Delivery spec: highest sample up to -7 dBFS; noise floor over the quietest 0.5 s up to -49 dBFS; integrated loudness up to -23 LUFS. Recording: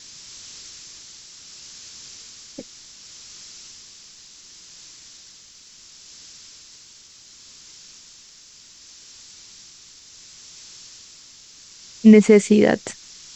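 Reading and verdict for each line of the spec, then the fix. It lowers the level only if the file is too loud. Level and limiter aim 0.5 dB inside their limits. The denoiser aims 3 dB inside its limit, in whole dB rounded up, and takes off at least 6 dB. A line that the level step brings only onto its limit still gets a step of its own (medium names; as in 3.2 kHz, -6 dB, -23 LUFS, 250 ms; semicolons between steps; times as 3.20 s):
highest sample -2.5 dBFS: fail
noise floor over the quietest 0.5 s -48 dBFS: fail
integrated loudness -14.5 LUFS: fail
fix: trim -9 dB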